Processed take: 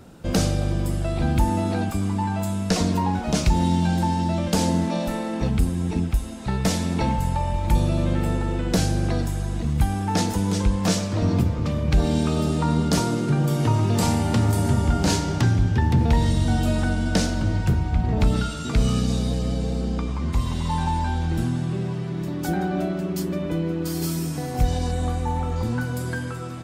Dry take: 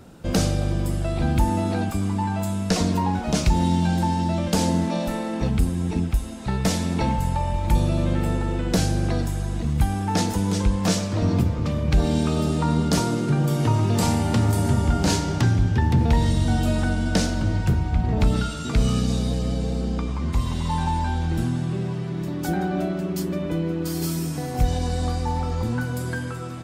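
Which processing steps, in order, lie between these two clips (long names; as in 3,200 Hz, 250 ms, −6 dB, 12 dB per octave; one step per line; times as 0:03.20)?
0:24.91–0:25.56: parametric band 4,900 Hz −13.5 dB 0.37 octaves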